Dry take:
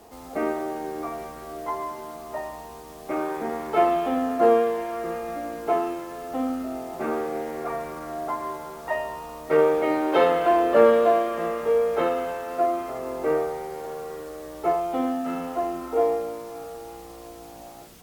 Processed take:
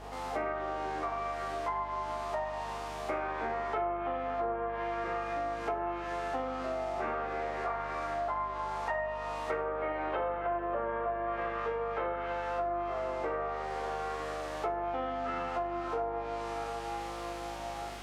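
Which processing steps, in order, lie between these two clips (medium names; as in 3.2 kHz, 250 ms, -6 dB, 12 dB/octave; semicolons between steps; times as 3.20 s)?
spectral sustain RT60 0.98 s; in parallel at -0.5 dB: peak limiter -15.5 dBFS, peak gain reduction 11 dB; on the sum: band-pass filter 1.5 kHz, Q 0.63; low-pass that closes with the level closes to 1.5 kHz, closed at -16.5 dBFS; on a send: flutter echo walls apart 6.9 m, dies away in 0.45 s; on the sum: compression 6:1, threshold -32 dBFS, peak gain reduction 18 dB; hum 50 Hz, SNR 15 dB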